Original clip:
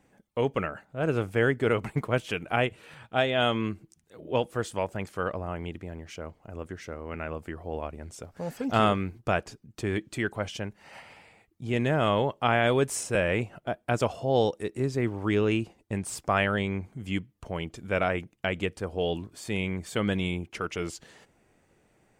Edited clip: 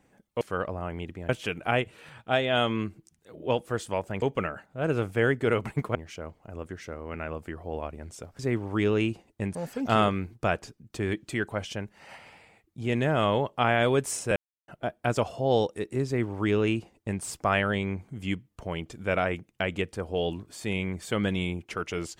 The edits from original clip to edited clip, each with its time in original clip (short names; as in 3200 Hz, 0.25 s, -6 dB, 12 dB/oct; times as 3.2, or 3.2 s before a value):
0.41–2.14 swap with 5.07–5.95
13.2–13.52 mute
14.9–16.06 copy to 8.39